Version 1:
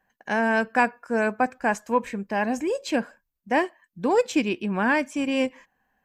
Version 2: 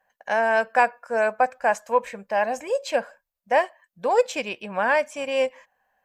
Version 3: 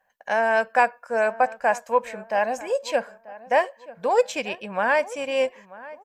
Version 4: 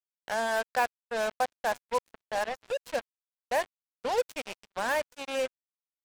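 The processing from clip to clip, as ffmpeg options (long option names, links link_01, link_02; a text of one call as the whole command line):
ffmpeg -i in.wav -af "lowshelf=frequency=430:width_type=q:width=3:gain=-8.5" out.wav
ffmpeg -i in.wav -filter_complex "[0:a]asplit=2[link_01][link_02];[link_02]adelay=938,lowpass=frequency=1900:poles=1,volume=-18dB,asplit=2[link_03][link_04];[link_04]adelay=938,lowpass=frequency=1900:poles=1,volume=0.34,asplit=2[link_05][link_06];[link_06]adelay=938,lowpass=frequency=1900:poles=1,volume=0.34[link_07];[link_01][link_03][link_05][link_07]amix=inputs=4:normalize=0" out.wav
ffmpeg -i in.wav -af "acrusher=bits=3:mix=0:aa=0.5,volume=-8.5dB" out.wav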